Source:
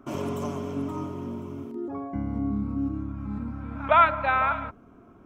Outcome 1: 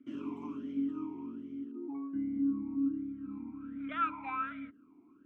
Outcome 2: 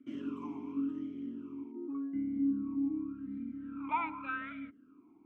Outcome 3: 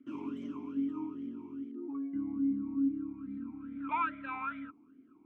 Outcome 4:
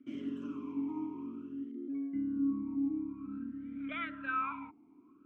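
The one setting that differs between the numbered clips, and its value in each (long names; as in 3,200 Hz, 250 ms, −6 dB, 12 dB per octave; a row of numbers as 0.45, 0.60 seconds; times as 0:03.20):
formant filter swept between two vowels, speed: 1.3, 0.87, 2.4, 0.52 Hertz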